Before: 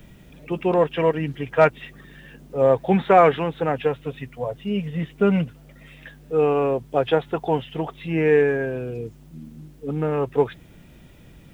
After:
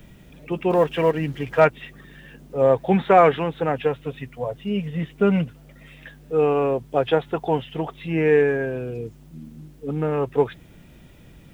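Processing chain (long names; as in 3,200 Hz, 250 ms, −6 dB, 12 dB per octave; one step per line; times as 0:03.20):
0:00.70–0:01.60: mu-law and A-law mismatch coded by mu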